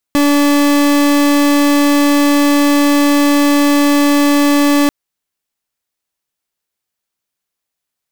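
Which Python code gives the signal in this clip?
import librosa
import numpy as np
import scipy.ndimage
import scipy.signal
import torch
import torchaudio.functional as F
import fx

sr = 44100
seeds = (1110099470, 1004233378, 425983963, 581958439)

y = fx.pulse(sr, length_s=4.74, hz=288.0, level_db=-10.5, duty_pct=39)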